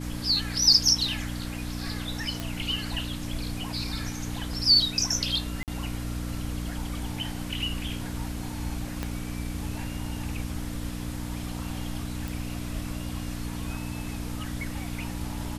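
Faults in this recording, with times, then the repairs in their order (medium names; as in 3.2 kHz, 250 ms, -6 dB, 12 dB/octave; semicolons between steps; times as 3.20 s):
hum 60 Hz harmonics 5 -35 dBFS
2.40 s: pop
5.63–5.68 s: dropout 48 ms
9.03 s: pop -16 dBFS
12.28 s: pop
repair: de-click; de-hum 60 Hz, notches 5; interpolate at 5.63 s, 48 ms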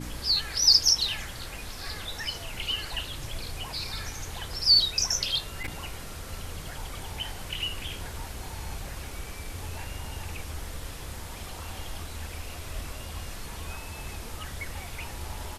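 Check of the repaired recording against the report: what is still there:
9.03 s: pop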